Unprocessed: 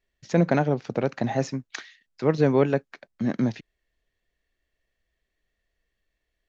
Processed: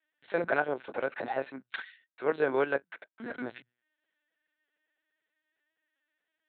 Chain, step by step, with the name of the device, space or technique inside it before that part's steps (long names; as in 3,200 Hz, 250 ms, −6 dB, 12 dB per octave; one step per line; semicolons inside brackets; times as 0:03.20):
mains-hum notches 60/120/180 Hz
talking toy (linear-prediction vocoder at 8 kHz pitch kept; high-pass filter 450 Hz 12 dB per octave; parametric band 1,500 Hz +10 dB 0.22 octaves)
level −2.5 dB